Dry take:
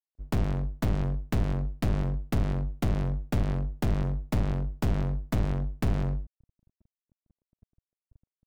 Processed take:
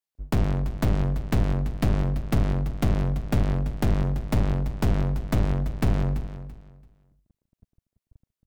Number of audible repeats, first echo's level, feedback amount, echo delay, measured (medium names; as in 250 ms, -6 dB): 2, -13.0 dB, 23%, 336 ms